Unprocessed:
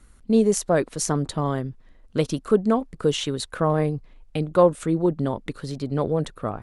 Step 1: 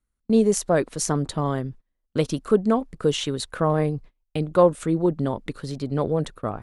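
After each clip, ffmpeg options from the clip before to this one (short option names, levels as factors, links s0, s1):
-af "agate=range=0.0447:threshold=0.0112:ratio=16:detection=peak"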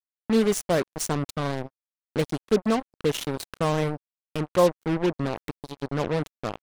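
-af "acrusher=bits=3:mix=0:aa=0.5,volume=0.708"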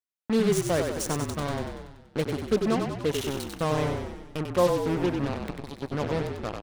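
-filter_complex "[0:a]asplit=9[s0][s1][s2][s3][s4][s5][s6][s7][s8];[s1]adelay=95,afreqshift=-34,volume=0.562[s9];[s2]adelay=190,afreqshift=-68,volume=0.331[s10];[s3]adelay=285,afreqshift=-102,volume=0.195[s11];[s4]adelay=380,afreqshift=-136,volume=0.116[s12];[s5]adelay=475,afreqshift=-170,volume=0.0684[s13];[s6]adelay=570,afreqshift=-204,volume=0.0403[s14];[s7]adelay=665,afreqshift=-238,volume=0.0237[s15];[s8]adelay=760,afreqshift=-272,volume=0.014[s16];[s0][s9][s10][s11][s12][s13][s14][s15][s16]amix=inputs=9:normalize=0,volume=0.708"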